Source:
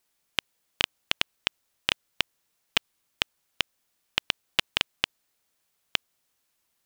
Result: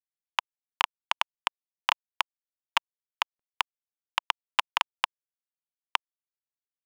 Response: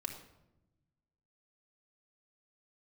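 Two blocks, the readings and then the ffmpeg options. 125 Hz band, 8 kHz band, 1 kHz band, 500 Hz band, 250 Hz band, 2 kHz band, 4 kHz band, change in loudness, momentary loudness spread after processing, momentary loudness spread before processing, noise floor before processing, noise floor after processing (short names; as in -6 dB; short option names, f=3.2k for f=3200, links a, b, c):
under -15 dB, -3.5 dB, +10.5 dB, -4.5 dB, under -15 dB, -1.0 dB, -4.0 dB, -1.0 dB, 5 LU, 5 LU, -76 dBFS, under -85 dBFS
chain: -af "highpass=f=980:t=q:w=5.2,aemphasis=mode=reproduction:type=75kf,aresample=16000,asoftclip=type=tanh:threshold=-4.5dB,aresample=44100,acrusher=bits=10:mix=0:aa=0.000001,adynamicsmooth=sensitivity=7.5:basefreq=1.5k,volume=2dB"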